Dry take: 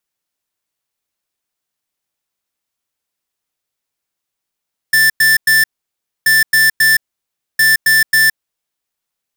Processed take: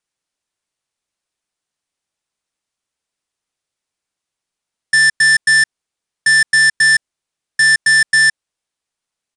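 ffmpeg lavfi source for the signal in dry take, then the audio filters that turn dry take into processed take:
-f lavfi -i "aevalsrc='0.316*(2*lt(mod(1770*t,1),0.5)-1)*clip(min(mod(mod(t,1.33),0.27),0.17-mod(mod(t,1.33),0.27))/0.005,0,1)*lt(mod(t,1.33),0.81)':duration=3.99:sample_rate=44100"
-af "aresample=22050,aresample=44100"

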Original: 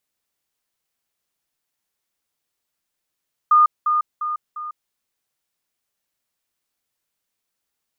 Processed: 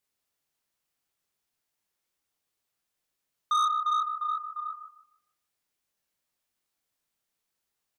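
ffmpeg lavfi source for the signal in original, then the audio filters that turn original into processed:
-f lavfi -i "aevalsrc='pow(10,(-9.5-6*floor(t/0.35))/20)*sin(2*PI*1220*t)*clip(min(mod(t,0.35),0.15-mod(t,0.35))/0.005,0,1)':duration=1.4:sample_rate=44100"
-filter_complex "[0:a]flanger=delay=19:depth=6.2:speed=2.7,asplit=2[link_01][link_02];[link_02]adelay=152,lowpass=frequency=1000:poles=1,volume=-6dB,asplit=2[link_03][link_04];[link_04]adelay=152,lowpass=frequency=1000:poles=1,volume=0.4,asplit=2[link_05][link_06];[link_06]adelay=152,lowpass=frequency=1000:poles=1,volume=0.4,asplit=2[link_07][link_08];[link_08]adelay=152,lowpass=frequency=1000:poles=1,volume=0.4,asplit=2[link_09][link_10];[link_10]adelay=152,lowpass=frequency=1000:poles=1,volume=0.4[link_11];[link_03][link_05][link_07][link_09][link_11]amix=inputs=5:normalize=0[link_12];[link_01][link_12]amix=inputs=2:normalize=0,asoftclip=type=tanh:threshold=-22dB"

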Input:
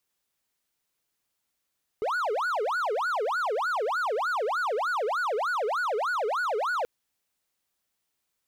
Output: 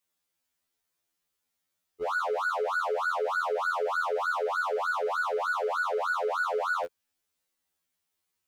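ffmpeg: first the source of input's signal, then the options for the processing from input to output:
-f lavfi -i "aevalsrc='0.0708*(1-4*abs(mod((946*t-534/(2*PI*3.3)*sin(2*PI*3.3*t))+0.25,1)-0.5))':duration=4.83:sample_rate=44100"
-af "afftfilt=real='re*2*eq(mod(b,4),0)':imag='im*2*eq(mod(b,4),0)':win_size=2048:overlap=0.75"

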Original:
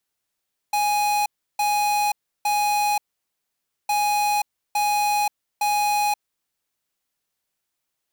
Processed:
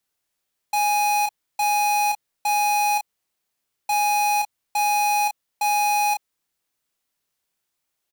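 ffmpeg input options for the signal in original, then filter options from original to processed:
-f lavfi -i "aevalsrc='0.0891*(2*lt(mod(830*t,1),0.5)-1)*clip(min(mod(mod(t,3.16),0.86),0.53-mod(mod(t,3.16),0.86))/0.005,0,1)*lt(mod(t,3.16),2.58)':duration=6.32:sample_rate=44100"
-filter_complex "[0:a]asplit=2[link_01][link_02];[link_02]adelay=31,volume=-5dB[link_03];[link_01][link_03]amix=inputs=2:normalize=0"

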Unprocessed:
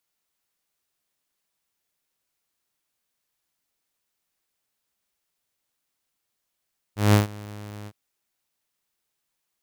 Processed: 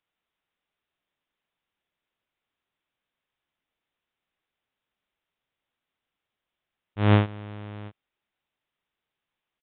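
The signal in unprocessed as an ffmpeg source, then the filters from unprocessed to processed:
-f lavfi -i "aevalsrc='0.316*(2*mod(104*t,1)-1)':duration=0.961:sample_rate=44100,afade=type=in:duration=0.175,afade=type=out:start_time=0.175:duration=0.133:silence=0.0668,afade=type=out:start_time=0.91:duration=0.051"
-af "aresample=8000,aresample=44100"

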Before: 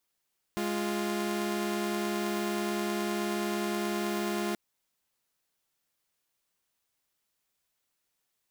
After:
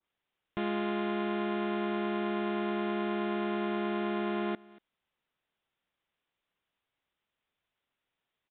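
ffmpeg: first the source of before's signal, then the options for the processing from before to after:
-f lavfi -i "aevalsrc='0.0335*((2*mod(207.65*t,1)-1)+(2*mod(349.23*t,1)-1))':duration=3.98:sample_rate=44100"
-af "aecho=1:1:234:0.0708,aresample=8000,aresample=44100,adynamicequalizer=threshold=0.00398:dfrequency=1800:dqfactor=0.7:tfrequency=1800:tqfactor=0.7:attack=5:release=100:ratio=0.375:range=2:mode=cutabove:tftype=highshelf"

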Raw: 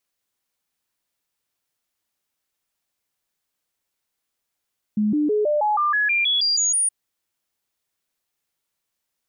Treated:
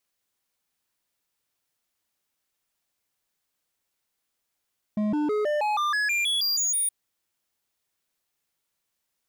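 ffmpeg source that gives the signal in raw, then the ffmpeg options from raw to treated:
-f lavfi -i "aevalsrc='0.141*clip(min(mod(t,0.16),0.16-mod(t,0.16))/0.005,0,1)*sin(2*PI*211*pow(2,floor(t/0.16)/2)*mod(t,0.16))':duration=1.92:sample_rate=44100"
-af "asoftclip=type=hard:threshold=-24dB"

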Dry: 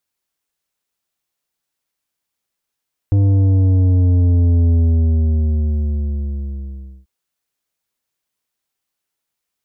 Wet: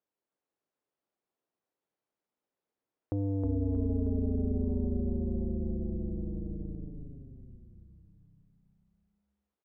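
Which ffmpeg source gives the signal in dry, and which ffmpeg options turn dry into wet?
-f lavfi -i "aevalsrc='0.282*clip((3.94-t)/2.35,0,1)*tanh(2.82*sin(2*PI*100*3.94/log(65/100)*(exp(log(65/100)*t/3.94)-1)))/tanh(2.82)':duration=3.94:sample_rate=44100"
-filter_complex "[0:a]acompressor=threshold=-27dB:ratio=2,bandpass=frequency=420:width_type=q:width=1:csg=0,asplit=2[link_01][link_02];[link_02]asplit=8[link_03][link_04][link_05][link_06][link_07][link_08][link_09][link_10];[link_03]adelay=315,afreqshift=-34,volume=-4dB[link_11];[link_04]adelay=630,afreqshift=-68,volume=-8.6dB[link_12];[link_05]adelay=945,afreqshift=-102,volume=-13.2dB[link_13];[link_06]adelay=1260,afreqshift=-136,volume=-17.7dB[link_14];[link_07]adelay=1575,afreqshift=-170,volume=-22.3dB[link_15];[link_08]adelay=1890,afreqshift=-204,volume=-26.9dB[link_16];[link_09]adelay=2205,afreqshift=-238,volume=-31.5dB[link_17];[link_10]adelay=2520,afreqshift=-272,volume=-36.1dB[link_18];[link_11][link_12][link_13][link_14][link_15][link_16][link_17][link_18]amix=inputs=8:normalize=0[link_19];[link_01][link_19]amix=inputs=2:normalize=0"

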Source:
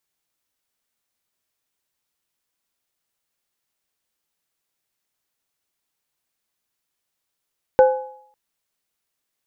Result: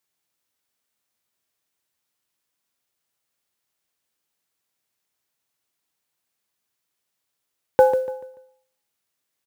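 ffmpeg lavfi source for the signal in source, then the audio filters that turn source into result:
-f lavfi -i "aevalsrc='0.473*pow(10,-3*t/0.55)*sin(2*PI*518*t)+0.188*pow(10,-3*t/0.74)*sin(2*PI*838*t)+0.0562*pow(10,-3*t/0.4)*sin(2*PI*1500*t)':duration=0.55:sample_rate=44100"
-filter_complex "[0:a]highpass=frequency=61:width=0.5412,highpass=frequency=61:width=1.3066,acrusher=bits=8:mode=log:mix=0:aa=0.000001,asplit=2[link_01][link_02];[link_02]aecho=0:1:145|290|435|580:0.282|0.0958|0.0326|0.0111[link_03];[link_01][link_03]amix=inputs=2:normalize=0"

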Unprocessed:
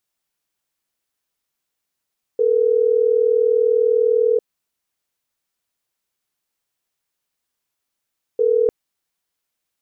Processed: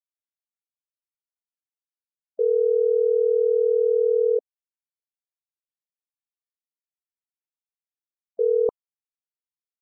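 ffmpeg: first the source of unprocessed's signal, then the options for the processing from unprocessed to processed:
-f lavfi -i "aevalsrc='0.158*(sin(2*PI*440*t)+sin(2*PI*480*t))*clip(min(mod(t,6),2-mod(t,6))/0.005,0,1)':duration=6.3:sample_rate=44100"
-af "afftfilt=real='re*gte(hypot(re,im),0.0251)':imag='im*gte(hypot(re,im),0.0251)':win_size=1024:overlap=0.75,tiltshelf=frequency=700:gain=-10"

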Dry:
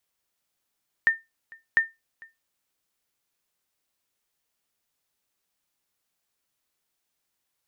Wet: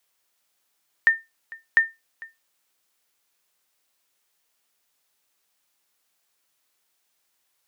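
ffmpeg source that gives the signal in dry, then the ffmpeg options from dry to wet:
-f lavfi -i "aevalsrc='0.266*(sin(2*PI*1810*mod(t,0.7))*exp(-6.91*mod(t,0.7)/0.2)+0.0501*sin(2*PI*1810*max(mod(t,0.7)-0.45,0))*exp(-6.91*max(mod(t,0.7)-0.45,0)/0.2))':duration=1.4:sample_rate=44100"
-filter_complex "[0:a]lowshelf=frequency=270:gain=-11,asplit=2[link_01][link_02];[link_02]alimiter=limit=-20dB:level=0:latency=1:release=125,volume=2.5dB[link_03];[link_01][link_03]amix=inputs=2:normalize=0"

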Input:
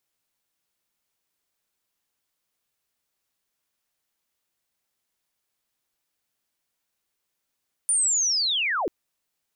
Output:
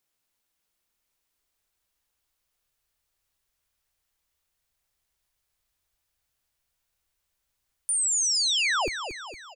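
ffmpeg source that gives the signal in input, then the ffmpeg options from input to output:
-f lavfi -i "aevalsrc='pow(10,(-18.5-4.5*t/0.99)/20)*sin(2*PI*(9400*t-9120*t*t/(2*0.99)))':duration=0.99:sample_rate=44100"
-af "asubboost=boost=8.5:cutoff=77,alimiter=limit=-22dB:level=0:latency=1,aecho=1:1:230|460|690|920|1150|1380:0.355|0.181|0.0923|0.0471|0.024|0.0122"

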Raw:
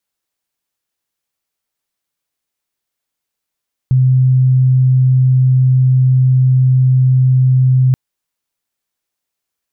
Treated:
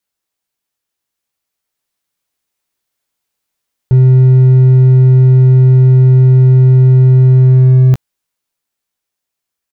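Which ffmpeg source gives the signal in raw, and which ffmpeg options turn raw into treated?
-f lavfi -i "sine=frequency=129:duration=4.03:sample_rate=44100,volume=11.06dB"
-filter_complex "[0:a]dynaudnorm=framelen=220:gausssize=17:maxgain=5.5dB,volume=6.5dB,asoftclip=hard,volume=-6.5dB,asplit=2[link_01][link_02];[link_02]adelay=16,volume=-9dB[link_03];[link_01][link_03]amix=inputs=2:normalize=0"

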